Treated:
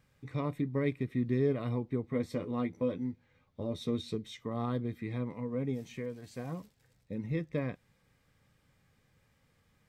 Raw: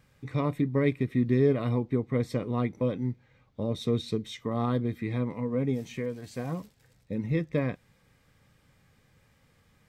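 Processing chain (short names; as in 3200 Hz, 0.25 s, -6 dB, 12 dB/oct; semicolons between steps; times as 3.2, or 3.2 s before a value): 2.03–4.15 doubler 12 ms -6 dB; gain -6 dB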